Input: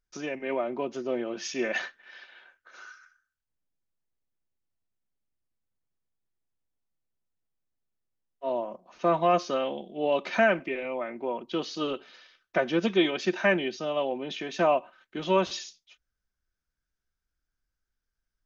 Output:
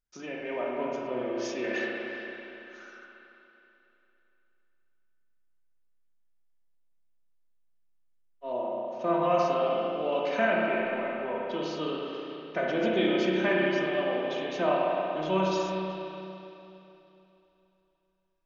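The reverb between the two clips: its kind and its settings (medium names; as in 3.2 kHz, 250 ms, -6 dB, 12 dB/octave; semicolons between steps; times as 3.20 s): spring tank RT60 3.1 s, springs 32/58 ms, chirp 75 ms, DRR -4 dB; trim -6 dB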